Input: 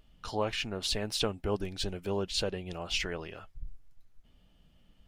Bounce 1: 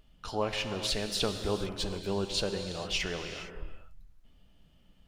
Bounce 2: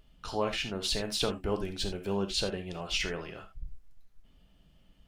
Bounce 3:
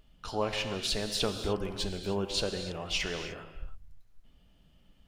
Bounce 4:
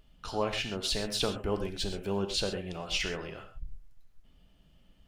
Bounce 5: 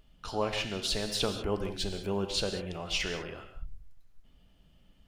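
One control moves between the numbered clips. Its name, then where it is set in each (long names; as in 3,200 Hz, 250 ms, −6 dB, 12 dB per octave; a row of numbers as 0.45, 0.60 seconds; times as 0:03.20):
reverb whose tail is shaped and stops, gate: 490, 100, 330, 150, 220 milliseconds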